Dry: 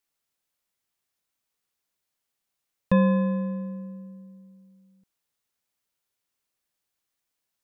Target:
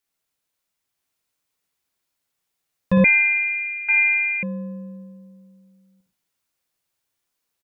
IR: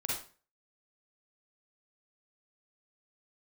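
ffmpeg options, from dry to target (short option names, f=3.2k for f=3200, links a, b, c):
-filter_complex "[0:a]aecho=1:1:969:0.631,asplit=2[a][b];[1:a]atrim=start_sample=2205,adelay=11[c];[b][c]afir=irnorm=-1:irlink=0,volume=-4.5dB[d];[a][d]amix=inputs=2:normalize=0,asettb=1/sr,asplit=3[e][f][g];[e]atrim=end=3.044[h];[f]atrim=start=3.04:end=4.43,asetpts=PTS-STARTPTS,afade=t=in:d=0.004:c=qsin,afade=t=out:st=1.386:d=0.004:c=qsin,lowpass=f=2.2k:t=q:w=0.5098,lowpass=f=2.2k:t=q:w=0.6013,lowpass=f=2.2k:t=q:w=0.9,lowpass=f=2.2k:t=q:w=2.563,afreqshift=-2600[i];[g]atrim=start=4.426[j];[h][i]acrossfade=d=0.004:c1=hsin:c2=qsin[k];[k][j]acrossfade=d=0.004:c1=qsin:c2=hsin"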